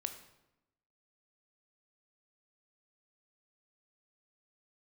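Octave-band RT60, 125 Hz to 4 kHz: 1.0, 1.1, 0.95, 0.90, 0.75, 0.65 s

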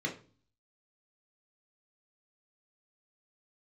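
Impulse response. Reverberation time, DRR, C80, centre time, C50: 0.40 s, -0.5 dB, 17.0 dB, 17 ms, 10.5 dB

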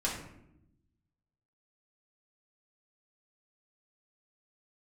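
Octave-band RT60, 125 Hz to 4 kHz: 1.5, 1.3, 0.95, 0.70, 0.65, 0.50 s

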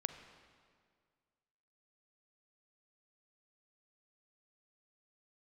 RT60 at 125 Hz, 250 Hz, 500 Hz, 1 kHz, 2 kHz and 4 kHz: 2.1, 2.1, 2.0, 1.9, 1.7, 1.6 s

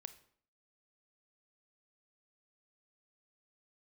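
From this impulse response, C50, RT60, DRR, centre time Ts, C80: 14.5 dB, 0.55 s, 11.5 dB, 5 ms, 17.5 dB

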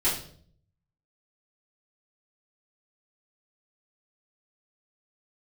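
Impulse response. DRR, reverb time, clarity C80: -11.5 dB, 0.55 s, 10.5 dB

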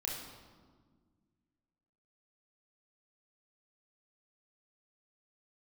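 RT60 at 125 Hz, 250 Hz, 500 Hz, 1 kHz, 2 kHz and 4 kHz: 2.4, 2.5, 1.7, 1.5, 1.1, 1.0 s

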